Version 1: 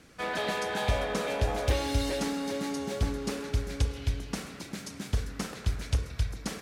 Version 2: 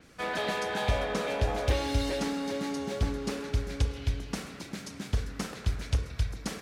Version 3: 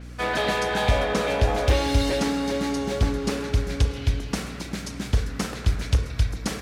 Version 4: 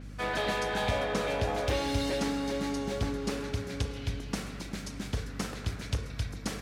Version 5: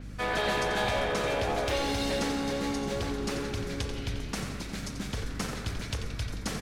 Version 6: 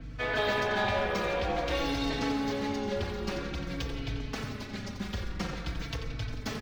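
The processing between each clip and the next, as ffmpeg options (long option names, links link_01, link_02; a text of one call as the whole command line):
ffmpeg -i in.wav -af "adynamicequalizer=threshold=0.002:dfrequency=6500:dqfactor=0.7:tfrequency=6500:tqfactor=0.7:attack=5:release=100:ratio=0.375:range=2.5:mode=cutabove:tftype=highshelf" out.wav
ffmpeg -i in.wav -af "asoftclip=type=hard:threshold=-18.5dB,aeval=exprs='val(0)+0.00562*(sin(2*PI*60*n/s)+sin(2*PI*2*60*n/s)/2+sin(2*PI*3*60*n/s)/3+sin(2*PI*4*60*n/s)/4+sin(2*PI*5*60*n/s)/5)':channel_layout=same,volume=7dB" out.wav
ffmpeg -i in.wav -af "highpass=90,aeval=exprs='val(0)+0.0158*(sin(2*PI*50*n/s)+sin(2*PI*2*50*n/s)/2+sin(2*PI*3*50*n/s)/3+sin(2*PI*4*50*n/s)/4+sin(2*PI*5*50*n/s)/5)':channel_layout=same,volume=-6.5dB" out.wav
ffmpeg -i in.wav -filter_complex "[0:a]asplit=7[link_01][link_02][link_03][link_04][link_05][link_06][link_07];[link_02]adelay=88,afreqshift=-63,volume=-9dB[link_08];[link_03]adelay=176,afreqshift=-126,volume=-14.7dB[link_09];[link_04]adelay=264,afreqshift=-189,volume=-20.4dB[link_10];[link_05]adelay=352,afreqshift=-252,volume=-26dB[link_11];[link_06]adelay=440,afreqshift=-315,volume=-31.7dB[link_12];[link_07]adelay=528,afreqshift=-378,volume=-37.4dB[link_13];[link_01][link_08][link_09][link_10][link_11][link_12][link_13]amix=inputs=7:normalize=0,acrossover=split=610[link_14][link_15];[link_14]alimiter=level_in=3.5dB:limit=-24dB:level=0:latency=1,volume=-3.5dB[link_16];[link_16][link_15]amix=inputs=2:normalize=0,volume=2dB" out.wav
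ffmpeg -i in.wav -filter_complex "[0:a]acrossover=split=170|1700|5900[link_01][link_02][link_03][link_04];[link_04]acrusher=samples=19:mix=1:aa=0.000001:lfo=1:lforange=30.4:lforate=1.5[link_05];[link_01][link_02][link_03][link_05]amix=inputs=4:normalize=0,asplit=2[link_06][link_07];[link_07]adelay=4,afreqshift=-0.5[link_08];[link_06][link_08]amix=inputs=2:normalize=1,volume=2dB" out.wav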